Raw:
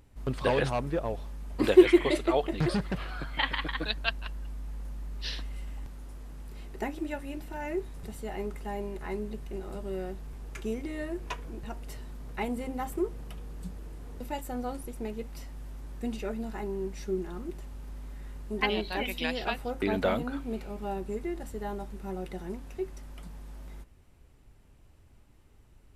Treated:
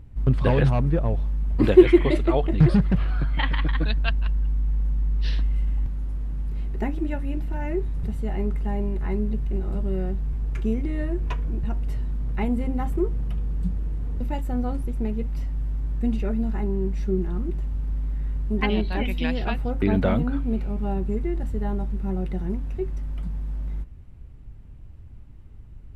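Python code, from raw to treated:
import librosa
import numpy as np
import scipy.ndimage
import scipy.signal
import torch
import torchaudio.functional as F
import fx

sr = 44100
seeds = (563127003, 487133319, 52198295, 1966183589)

y = fx.bass_treble(x, sr, bass_db=14, treble_db=-9)
y = y * 10.0 ** (1.5 / 20.0)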